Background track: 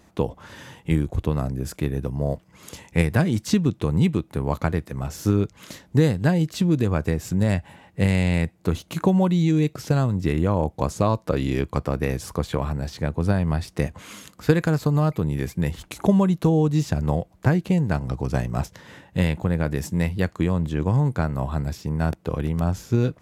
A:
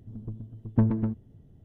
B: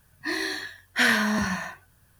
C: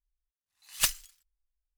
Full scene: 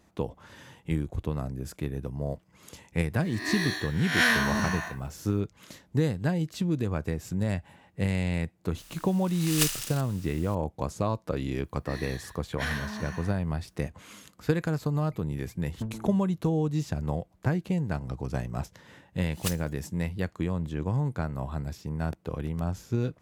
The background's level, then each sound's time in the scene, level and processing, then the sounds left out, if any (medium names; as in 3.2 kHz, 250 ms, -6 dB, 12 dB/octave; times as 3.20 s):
background track -7.5 dB
3.21 s: add B -3.5 dB + reverse spectral sustain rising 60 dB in 0.62 s
8.78 s: add C -2 dB + spectral levelling over time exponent 0.4
11.62 s: add B -12.5 dB
15.03 s: add A -12.5 dB
18.63 s: add C -7.5 dB